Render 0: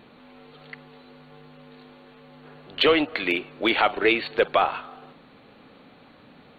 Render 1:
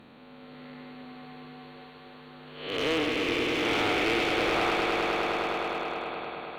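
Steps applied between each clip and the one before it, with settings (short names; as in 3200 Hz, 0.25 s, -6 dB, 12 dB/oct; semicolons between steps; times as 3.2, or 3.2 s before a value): time blur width 0.305 s; swelling echo 0.103 s, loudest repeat 5, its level -7.5 dB; one-sided clip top -27 dBFS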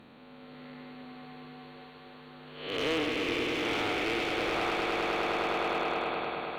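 vocal rider within 5 dB 0.5 s; gain -2.5 dB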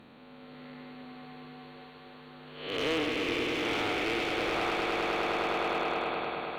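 nothing audible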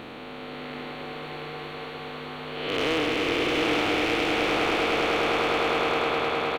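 per-bin compression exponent 0.6; echo 0.708 s -5.5 dB; gain +2.5 dB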